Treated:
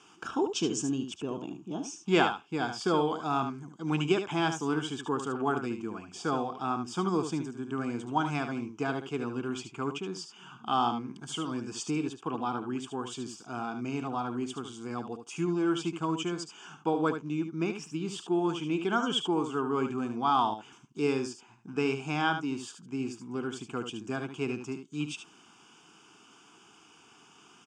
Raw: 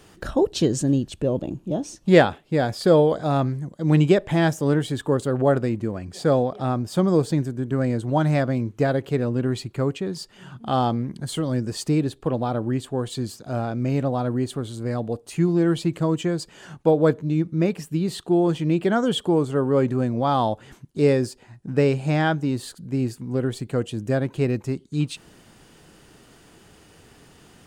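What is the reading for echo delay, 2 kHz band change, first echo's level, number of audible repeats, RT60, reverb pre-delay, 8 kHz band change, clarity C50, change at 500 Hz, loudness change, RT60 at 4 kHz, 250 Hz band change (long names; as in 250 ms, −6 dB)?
74 ms, −4.5 dB, −8.5 dB, 1, no reverb audible, no reverb audible, −4.0 dB, no reverb audible, −11.0 dB, −9.0 dB, no reverb audible, −9.0 dB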